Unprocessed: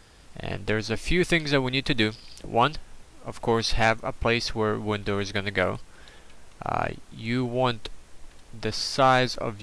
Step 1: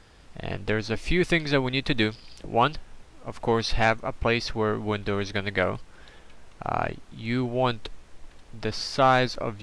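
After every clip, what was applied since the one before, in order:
high-shelf EQ 7,700 Hz −11.5 dB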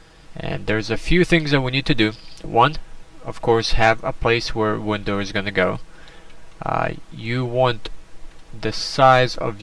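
comb filter 6.2 ms, depth 55%
level +5 dB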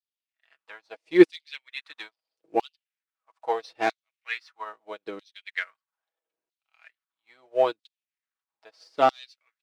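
leveller curve on the samples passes 1
auto-filter high-pass saw down 0.77 Hz 300–4,200 Hz
expander for the loud parts 2.5 to 1, over −33 dBFS
level −4 dB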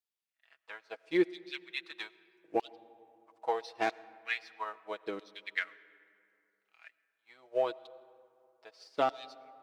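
downward compressor 3 to 1, threshold −26 dBFS, peak gain reduction 13.5 dB
comb and all-pass reverb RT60 2.7 s, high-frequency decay 0.45×, pre-delay 55 ms, DRR 19.5 dB
level −1.5 dB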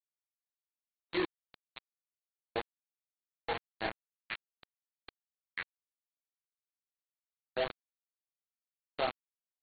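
chorus effect 1.9 Hz, delay 19 ms, depth 7 ms
bit reduction 5 bits
level −2.5 dB
AAC 16 kbit/s 32,000 Hz

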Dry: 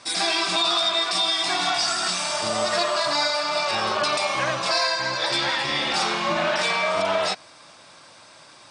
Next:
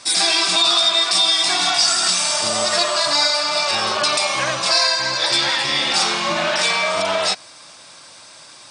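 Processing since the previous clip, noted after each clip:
high-shelf EQ 3,700 Hz +10.5 dB
level +1.5 dB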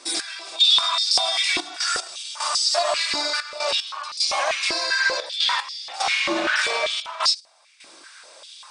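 brickwall limiter −10.5 dBFS, peak gain reduction 6.5 dB
gate pattern "x..xxxxx." 75 BPM −12 dB
high-pass on a step sequencer 5.1 Hz 330–4,800 Hz
level −5.5 dB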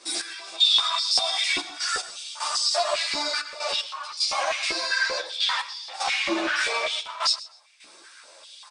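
repeating echo 127 ms, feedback 21%, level −18 dB
string-ensemble chorus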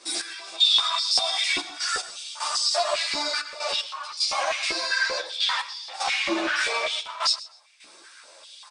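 no processing that can be heard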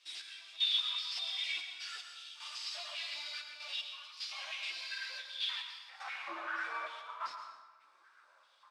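variable-slope delta modulation 64 kbit/s
band-pass filter sweep 3,000 Hz → 1,200 Hz, 0:05.63–0:06.24
dense smooth reverb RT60 1.3 s, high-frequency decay 0.65×, pre-delay 95 ms, DRR 6.5 dB
level −8.5 dB

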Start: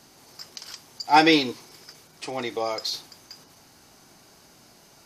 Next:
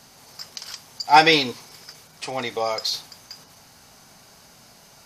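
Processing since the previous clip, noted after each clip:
parametric band 330 Hz −10.5 dB 0.49 octaves
level +4 dB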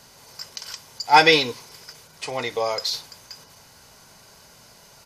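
comb filter 2 ms, depth 32%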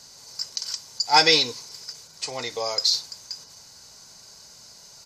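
flat-topped bell 5,600 Hz +11 dB 1.2 octaves
level −5 dB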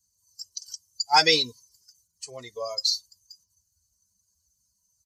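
spectral dynamics exaggerated over time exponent 2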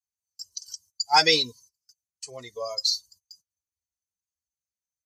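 noise gate −53 dBFS, range −24 dB

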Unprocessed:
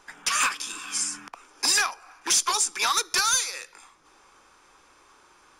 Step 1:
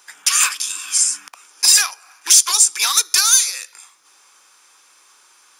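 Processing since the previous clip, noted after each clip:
spectral tilt +4.5 dB per octave
level −1 dB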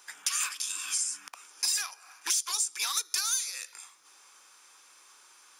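downward compressor 3 to 1, threshold −25 dBFS, peak gain reduction 13.5 dB
level −5 dB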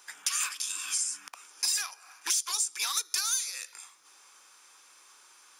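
no processing that can be heard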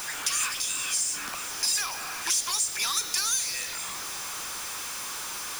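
converter with a step at zero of −30 dBFS

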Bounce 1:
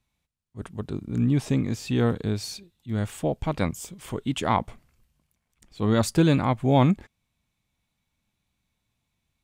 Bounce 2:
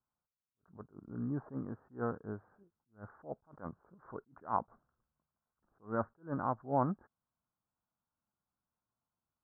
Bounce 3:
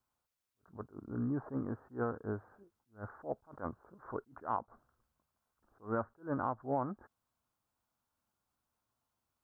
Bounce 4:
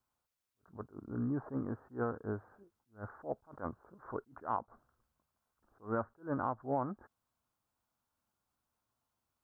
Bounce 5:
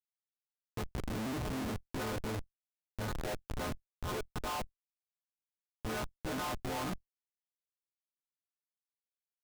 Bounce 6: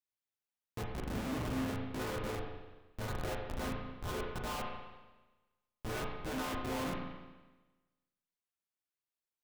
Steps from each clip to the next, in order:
Butterworth low-pass 1,500 Hz 72 dB per octave; spectral tilt +3.5 dB per octave; level that may rise only so fast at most 240 dB per second; level −7 dB
parametric band 170 Hz −8.5 dB 0.49 octaves; downward compressor 6 to 1, threshold −37 dBFS, peak gain reduction 11 dB; level +6 dB
no processing that can be heard
every partial snapped to a pitch grid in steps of 3 semitones; comparator with hysteresis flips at −45 dBFS; output level in coarse steps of 13 dB; level +15.5 dB
convolution reverb RT60 1.2 s, pre-delay 34 ms, DRR 0 dB; level −2.5 dB

